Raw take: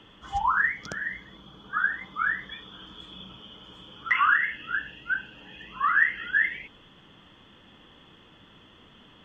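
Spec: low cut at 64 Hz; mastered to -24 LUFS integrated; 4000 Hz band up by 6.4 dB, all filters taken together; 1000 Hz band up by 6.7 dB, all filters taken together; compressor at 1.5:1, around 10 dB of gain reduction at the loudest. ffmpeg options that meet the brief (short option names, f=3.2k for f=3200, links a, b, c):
-af "highpass=64,equalizer=f=1k:t=o:g=8,equalizer=f=4k:t=o:g=8.5,acompressor=threshold=-41dB:ratio=1.5,volume=7.5dB"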